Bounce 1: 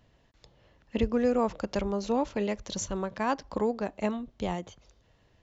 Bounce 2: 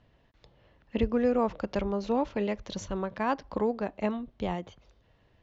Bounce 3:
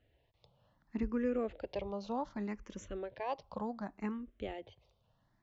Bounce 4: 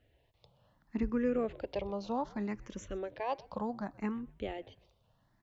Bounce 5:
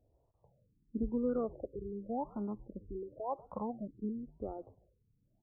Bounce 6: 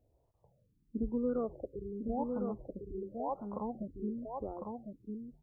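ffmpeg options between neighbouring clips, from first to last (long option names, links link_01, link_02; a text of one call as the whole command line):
ffmpeg -i in.wav -af "lowpass=3900" out.wav
ffmpeg -i in.wav -filter_complex "[0:a]asplit=2[link_01][link_02];[link_02]afreqshift=0.67[link_03];[link_01][link_03]amix=inputs=2:normalize=1,volume=-6dB" out.wav
ffmpeg -i in.wav -filter_complex "[0:a]asplit=3[link_01][link_02][link_03];[link_02]adelay=126,afreqshift=-83,volume=-23dB[link_04];[link_03]adelay=252,afreqshift=-166,volume=-32.9dB[link_05];[link_01][link_04][link_05]amix=inputs=3:normalize=0,volume=2.5dB" out.wav
ffmpeg -i in.wav -af "afftfilt=real='re*lt(b*sr/1024,450*pow(1500/450,0.5+0.5*sin(2*PI*0.93*pts/sr)))':imag='im*lt(b*sr/1024,450*pow(1500/450,0.5+0.5*sin(2*PI*0.93*pts/sr)))':win_size=1024:overlap=0.75,volume=-2dB" out.wav
ffmpeg -i in.wav -af "aecho=1:1:1053:0.596" out.wav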